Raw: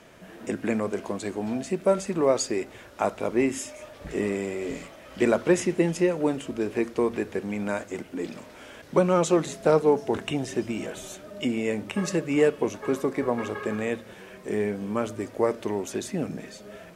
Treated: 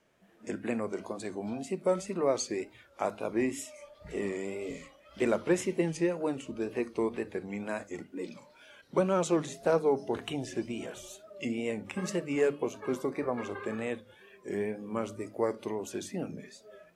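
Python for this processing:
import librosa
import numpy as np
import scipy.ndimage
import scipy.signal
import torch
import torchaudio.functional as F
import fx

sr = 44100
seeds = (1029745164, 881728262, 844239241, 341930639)

y = fx.noise_reduce_blind(x, sr, reduce_db=12)
y = fx.hum_notches(y, sr, base_hz=50, count=6)
y = fx.wow_flutter(y, sr, seeds[0], rate_hz=2.1, depth_cents=85.0)
y = y * librosa.db_to_amplitude(-6.0)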